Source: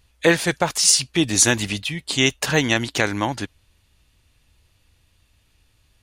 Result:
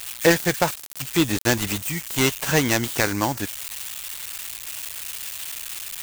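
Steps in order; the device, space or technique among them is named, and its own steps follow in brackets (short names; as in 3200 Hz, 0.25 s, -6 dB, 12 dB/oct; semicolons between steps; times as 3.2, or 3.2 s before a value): budget class-D amplifier (switching dead time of 0.14 ms; switching spikes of -15.5 dBFS)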